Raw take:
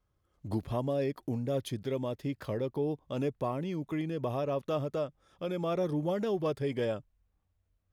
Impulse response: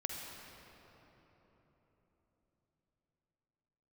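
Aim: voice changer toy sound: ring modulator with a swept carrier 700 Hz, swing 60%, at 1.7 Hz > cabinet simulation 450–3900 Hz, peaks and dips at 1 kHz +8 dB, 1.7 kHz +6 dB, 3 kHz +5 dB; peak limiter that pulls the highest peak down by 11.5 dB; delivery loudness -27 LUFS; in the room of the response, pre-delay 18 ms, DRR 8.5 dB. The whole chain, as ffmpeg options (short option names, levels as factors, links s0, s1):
-filter_complex "[0:a]alimiter=level_in=2.51:limit=0.0631:level=0:latency=1,volume=0.398,asplit=2[s0][s1];[1:a]atrim=start_sample=2205,adelay=18[s2];[s1][s2]afir=irnorm=-1:irlink=0,volume=0.335[s3];[s0][s3]amix=inputs=2:normalize=0,aeval=exprs='val(0)*sin(2*PI*700*n/s+700*0.6/1.7*sin(2*PI*1.7*n/s))':c=same,highpass=450,equalizer=f=1000:t=q:w=4:g=8,equalizer=f=1700:t=q:w=4:g=6,equalizer=f=3000:t=q:w=4:g=5,lowpass=f=3900:w=0.5412,lowpass=f=3900:w=1.3066,volume=4.47"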